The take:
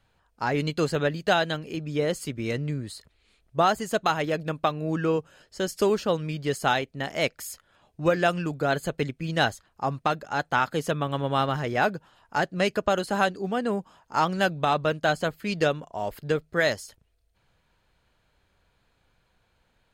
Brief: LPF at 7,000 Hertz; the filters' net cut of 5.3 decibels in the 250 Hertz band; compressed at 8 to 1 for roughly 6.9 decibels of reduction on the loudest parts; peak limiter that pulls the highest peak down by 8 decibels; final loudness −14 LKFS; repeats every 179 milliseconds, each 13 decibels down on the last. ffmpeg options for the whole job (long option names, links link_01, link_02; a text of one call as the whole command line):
ffmpeg -i in.wav -af "lowpass=7000,equalizer=frequency=250:width_type=o:gain=-8.5,acompressor=threshold=-25dB:ratio=8,alimiter=limit=-21.5dB:level=0:latency=1,aecho=1:1:179|358|537:0.224|0.0493|0.0108,volume=19.5dB" out.wav